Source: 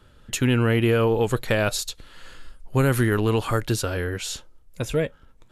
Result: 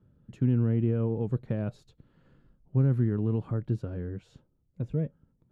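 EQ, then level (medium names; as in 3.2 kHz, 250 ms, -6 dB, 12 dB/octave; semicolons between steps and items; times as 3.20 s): band-pass filter 160 Hz, Q 1.6; 0.0 dB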